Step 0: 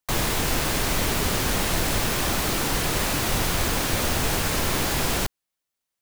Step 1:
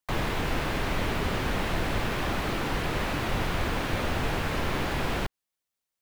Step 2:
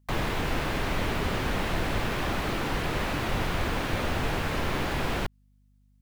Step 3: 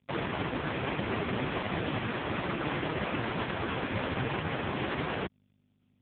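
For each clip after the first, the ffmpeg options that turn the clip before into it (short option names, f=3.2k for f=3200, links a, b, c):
-filter_complex "[0:a]acrossover=split=3500[a][b];[b]acompressor=threshold=-45dB:ratio=4:attack=1:release=60[c];[a][c]amix=inputs=2:normalize=0,volume=-3dB"
-af "aeval=exprs='val(0)+0.000891*(sin(2*PI*50*n/s)+sin(2*PI*2*50*n/s)/2+sin(2*PI*3*50*n/s)/3+sin(2*PI*4*50*n/s)/4+sin(2*PI*5*50*n/s)/5)':c=same"
-af "volume=2.5dB" -ar 8000 -c:a libopencore_amrnb -b:a 4750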